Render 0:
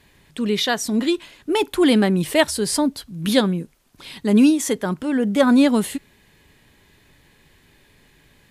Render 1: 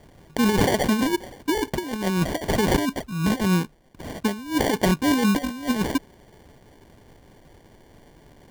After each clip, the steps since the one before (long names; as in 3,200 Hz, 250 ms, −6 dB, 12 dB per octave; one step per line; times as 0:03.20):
decimation without filtering 34×
compressor whose output falls as the input rises −21 dBFS, ratio −0.5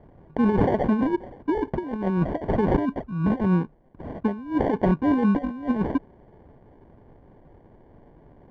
low-pass filter 1,100 Hz 12 dB per octave